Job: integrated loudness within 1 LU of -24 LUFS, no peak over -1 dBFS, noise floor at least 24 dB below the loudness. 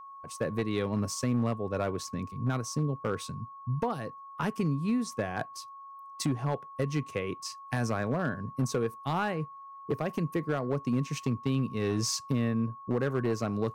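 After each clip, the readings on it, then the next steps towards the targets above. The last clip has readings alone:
clipped samples 1.1%; clipping level -21.5 dBFS; steady tone 1.1 kHz; tone level -44 dBFS; loudness -32.0 LUFS; peak level -21.5 dBFS; loudness target -24.0 LUFS
-> clip repair -21.5 dBFS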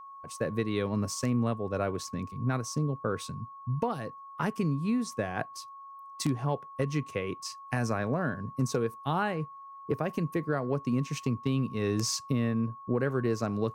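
clipped samples 0.0%; steady tone 1.1 kHz; tone level -44 dBFS
-> band-stop 1.1 kHz, Q 30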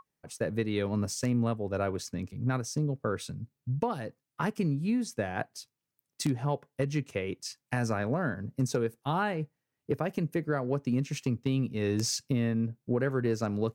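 steady tone not found; loudness -31.5 LUFS; peak level -13.0 dBFS; loudness target -24.0 LUFS
-> trim +7.5 dB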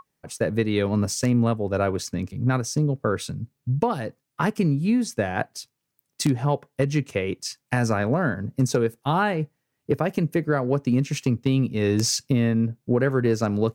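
loudness -24.0 LUFS; peak level -5.5 dBFS; noise floor -79 dBFS

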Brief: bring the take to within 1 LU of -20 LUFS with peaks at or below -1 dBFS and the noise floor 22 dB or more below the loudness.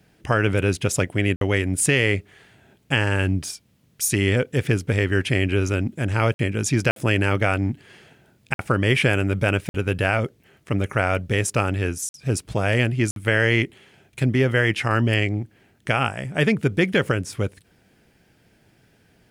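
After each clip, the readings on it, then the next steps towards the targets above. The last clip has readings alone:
dropouts 7; longest dropout 52 ms; loudness -22.0 LUFS; peak level -6.5 dBFS; loudness target -20.0 LUFS
-> interpolate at 1.36/6.34/6.91/8.54/9.69/12.09/13.11 s, 52 ms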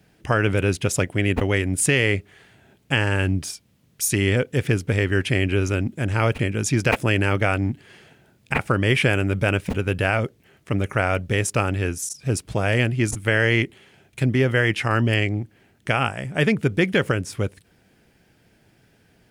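dropouts 0; loudness -22.0 LUFS; peak level -5.0 dBFS; loudness target -20.0 LUFS
-> trim +2 dB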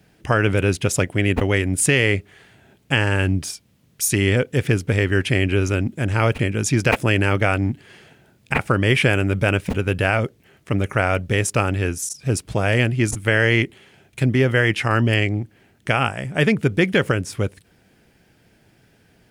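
loudness -20.0 LUFS; peak level -3.0 dBFS; noise floor -58 dBFS

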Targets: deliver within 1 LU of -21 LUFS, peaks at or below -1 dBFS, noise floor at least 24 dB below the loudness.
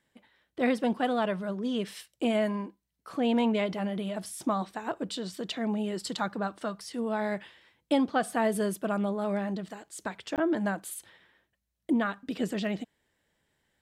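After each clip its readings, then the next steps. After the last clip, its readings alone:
dropouts 1; longest dropout 18 ms; loudness -31.0 LUFS; peak level -15.5 dBFS; loudness target -21.0 LUFS
-> interpolate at 10.36 s, 18 ms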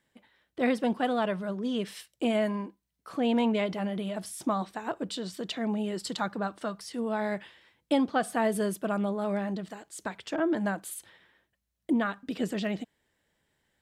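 dropouts 0; loudness -31.0 LUFS; peak level -15.5 dBFS; loudness target -21.0 LUFS
-> trim +10 dB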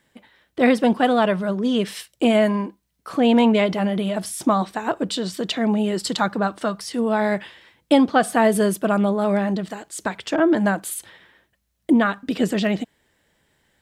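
loudness -21.0 LUFS; peak level -5.5 dBFS; noise floor -71 dBFS

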